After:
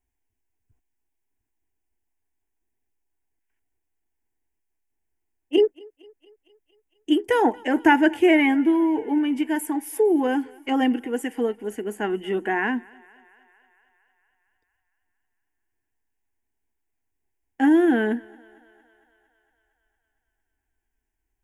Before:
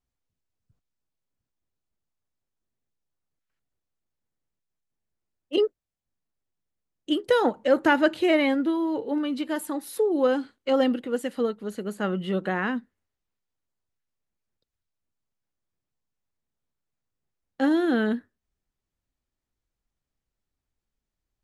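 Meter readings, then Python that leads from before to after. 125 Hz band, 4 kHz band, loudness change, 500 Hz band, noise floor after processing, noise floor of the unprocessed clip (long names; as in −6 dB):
can't be measured, 0.0 dB, +3.5 dB, +1.0 dB, −79 dBFS, below −85 dBFS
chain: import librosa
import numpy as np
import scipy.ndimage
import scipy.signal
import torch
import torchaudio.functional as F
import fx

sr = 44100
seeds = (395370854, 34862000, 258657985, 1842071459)

y = fx.fixed_phaser(x, sr, hz=830.0, stages=8)
y = fx.echo_thinned(y, sr, ms=229, feedback_pct=70, hz=340.0, wet_db=-24.0)
y = y * 10.0 ** (6.0 / 20.0)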